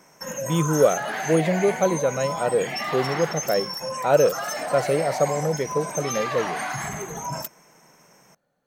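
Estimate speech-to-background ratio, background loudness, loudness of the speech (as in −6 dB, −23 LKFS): 5.5 dB, −29.5 LKFS, −24.0 LKFS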